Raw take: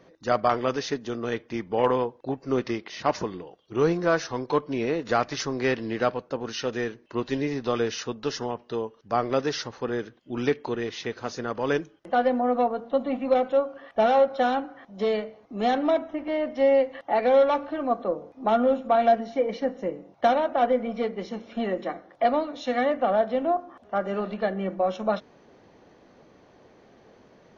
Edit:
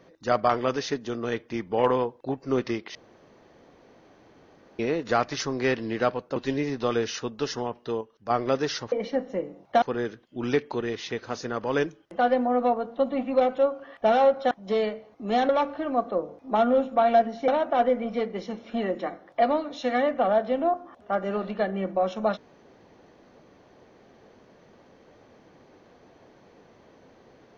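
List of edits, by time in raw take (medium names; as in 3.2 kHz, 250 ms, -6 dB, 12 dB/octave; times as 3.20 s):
2.95–4.79 s: room tone
6.36–7.20 s: delete
8.85–9.14 s: gain -5 dB
14.45–14.82 s: delete
15.80–17.42 s: delete
19.41–20.31 s: move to 9.76 s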